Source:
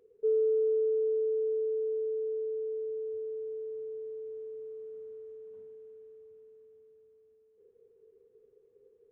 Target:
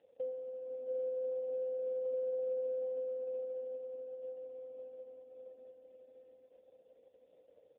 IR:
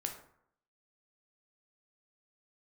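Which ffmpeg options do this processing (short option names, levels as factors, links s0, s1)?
-filter_complex "[0:a]acrossover=split=140|220[s0][s1][s2];[s2]alimiter=level_in=2.82:limit=0.0631:level=0:latency=1:release=169,volume=0.355[s3];[s0][s1][s3]amix=inputs=3:normalize=0,asetrate=51597,aresample=44100,afftfilt=real='re*(1-between(b*sr/4096,160,450))':imag='im*(1-between(b*sr/4096,160,450))':win_size=4096:overlap=0.75,adynamicequalizer=threshold=0.002:dfrequency=190:dqfactor=1.2:tfrequency=190:tqfactor=1.2:attack=5:release=100:ratio=0.375:range=2:mode=cutabove:tftype=bell,aecho=1:1:680|1292|1843|2339|2785:0.631|0.398|0.251|0.158|0.1" -ar 8000 -c:a libopencore_amrnb -b:a 5150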